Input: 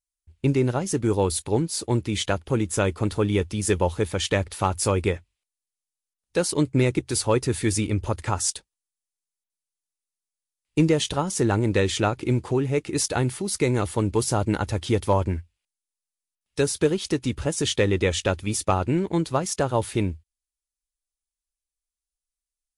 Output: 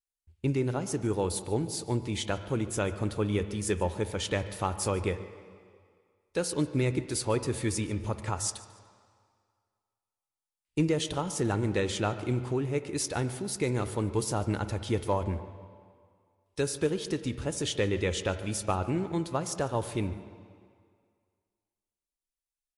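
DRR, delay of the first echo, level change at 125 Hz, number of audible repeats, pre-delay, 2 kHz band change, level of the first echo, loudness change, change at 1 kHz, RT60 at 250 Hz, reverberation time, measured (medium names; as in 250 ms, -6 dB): 11.0 dB, 146 ms, -6.5 dB, 1, 25 ms, -6.5 dB, -20.5 dB, -6.5 dB, -6.5 dB, 1.8 s, 2.0 s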